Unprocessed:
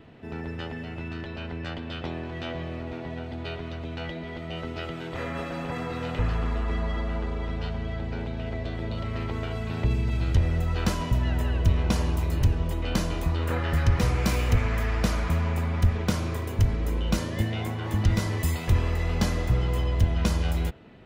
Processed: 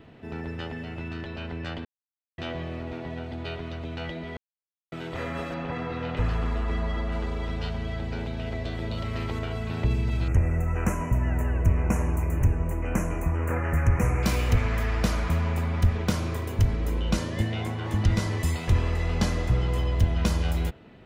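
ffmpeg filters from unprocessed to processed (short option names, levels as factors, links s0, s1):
-filter_complex "[0:a]asettb=1/sr,asplit=3[s0][s1][s2];[s0]atrim=end=5.544[s3];[s1]atrim=start=5.54:end=6.17,asetpts=PTS-STARTPTS,afade=t=in:d=0.004:c=qsin,afade=t=out:st=0.626:d=0.004:c=qsin,lowpass=3900[s4];[s2]atrim=start=6.166[s5];[s3][s4]acrossfade=d=0.004:c1=hsin:c2=qsin[s6];[s6][s5]acrossfade=d=0.004:c1=qsin:c2=hsin,asettb=1/sr,asplit=3[s7][s8][s9];[s7]atrim=end=7.124[s10];[s8]atrim=start=7.12:end=9.39,asetpts=PTS-STARTPTS,afade=t=in:d=0.004:c=qsin,afade=t=out:st=2.266:d=0.004:c=qsin,highshelf=f=3900:g=7[s11];[s9]atrim=start=9.386[s12];[s10][s11]acrossfade=d=0.004:c1=hsin:c2=qsin[s13];[s13][s12]acrossfade=d=0.004:c1=qsin:c2=hsin,asettb=1/sr,asplit=3[s14][s15][s16];[s14]atrim=end=10.284[s17];[s15]atrim=start=10.28:end=14.23,asetpts=PTS-STARTPTS,afade=t=in:d=0.004:c=qsin,afade=t=out:st=3.946:d=0.004:c=qsin,asuperstop=centerf=4000:order=8:qfactor=1.1[s18];[s16]atrim=start=14.226[s19];[s17][s18]acrossfade=d=0.004:c1=hsin:c2=qsin[s20];[s20][s19]acrossfade=d=0.004:c1=qsin:c2=hsin,asettb=1/sr,asplit=3[s21][s22][s23];[s21]atrim=end=17.014[s24];[s22]atrim=start=17.01:end=19.78,asetpts=PTS-STARTPTS,afade=t=in:d=0.004:c=qsin,afade=t=out:st=2.766:d=0.004:c=qsin,lowpass=11000[s25];[s23]atrim=start=19.776[s26];[s24][s25]acrossfade=d=0.004:c1=hsin:c2=qsin[s27];[s27][s26]acrossfade=d=0.004:c1=qsin:c2=hsin,asplit=5[s28][s29][s30][s31][s32];[s28]atrim=end=1.85,asetpts=PTS-STARTPTS,afade=t=out:st=1.846:d=0.004:c=hsin[s33];[s29]atrim=start=1.85:end=2.38,asetpts=PTS-STARTPTS,volume=0[s34];[s30]atrim=start=2.38:end=4.37,asetpts=PTS-STARTPTS,afade=t=in:d=0.004:c=hsin,afade=t=out:st=1.986:d=0.004:c=hsin[s35];[s31]atrim=start=4.37:end=4.92,asetpts=PTS-STARTPTS,volume=0[s36];[s32]atrim=start=4.92,asetpts=PTS-STARTPTS,afade=t=in:d=0.004:c=hsin[s37];[s33][s34][s35][s36][s37]concat=n=5:v=0:a=1"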